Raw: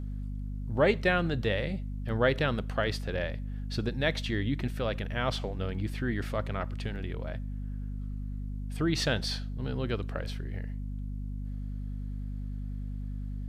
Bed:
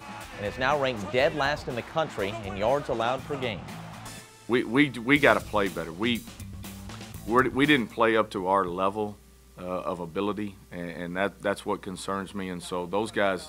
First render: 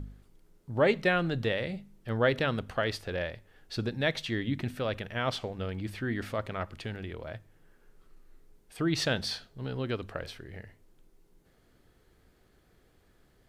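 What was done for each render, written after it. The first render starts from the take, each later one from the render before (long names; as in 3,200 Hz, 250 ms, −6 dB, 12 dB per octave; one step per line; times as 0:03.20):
hum removal 50 Hz, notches 5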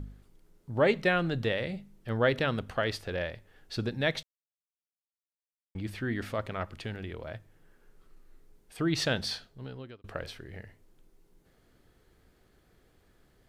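0:04.23–0:05.75: silence
0:09.33–0:10.04: fade out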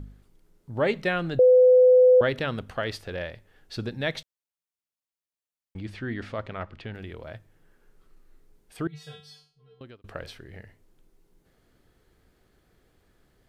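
0:01.39–0:02.21: beep over 505 Hz −12 dBFS
0:05.80–0:06.93: low-pass filter 7,400 Hz → 3,300 Hz
0:08.87–0:09.81: tuned comb filter 150 Hz, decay 0.4 s, harmonics odd, mix 100%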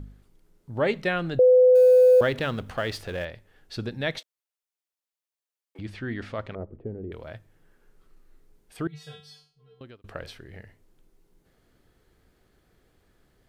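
0:01.75–0:03.25: mu-law and A-law mismatch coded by mu
0:04.18–0:05.79: Butterworth high-pass 310 Hz
0:06.55–0:07.12: low-pass with resonance 430 Hz, resonance Q 2.4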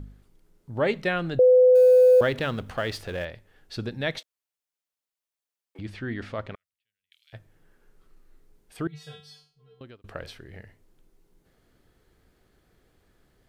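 0:06.55–0:07.33: inverse Chebyshev high-pass filter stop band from 900 Hz, stop band 60 dB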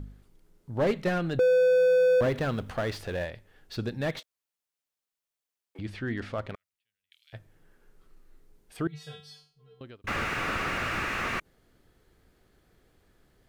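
0:10.07–0:11.40: sound drawn into the spectrogram noise 1,100–2,900 Hz −21 dBFS
slew-rate limiting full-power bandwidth 52 Hz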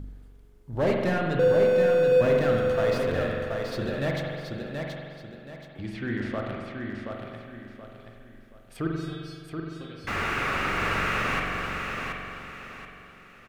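repeating echo 727 ms, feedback 33%, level −5 dB
spring reverb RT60 1.9 s, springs 43 ms, chirp 55 ms, DRR 0 dB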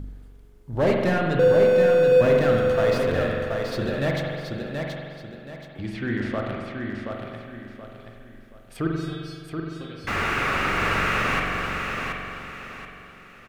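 level +3.5 dB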